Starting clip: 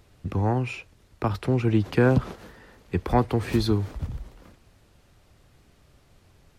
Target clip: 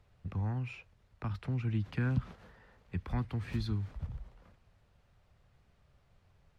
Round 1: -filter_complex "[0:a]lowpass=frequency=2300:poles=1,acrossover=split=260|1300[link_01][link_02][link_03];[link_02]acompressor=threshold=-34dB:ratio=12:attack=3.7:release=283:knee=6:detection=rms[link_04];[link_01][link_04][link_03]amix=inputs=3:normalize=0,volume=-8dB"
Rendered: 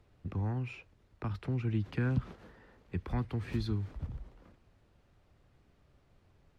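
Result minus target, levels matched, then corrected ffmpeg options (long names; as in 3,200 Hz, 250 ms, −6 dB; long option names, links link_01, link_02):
500 Hz band +4.0 dB
-filter_complex "[0:a]lowpass=frequency=2300:poles=1,acrossover=split=260|1300[link_01][link_02][link_03];[link_02]acompressor=threshold=-34dB:ratio=12:attack=3.7:release=283:knee=6:detection=rms,highpass=450[link_04];[link_01][link_04][link_03]amix=inputs=3:normalize=0,volume=-8dB"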